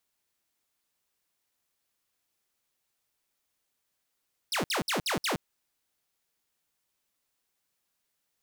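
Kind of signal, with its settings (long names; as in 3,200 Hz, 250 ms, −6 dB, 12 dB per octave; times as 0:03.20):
repeated falling chirps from 5,800 Hz, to 130 Hz, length 0.12 s saw, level −24 dB, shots 5, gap 0.06 s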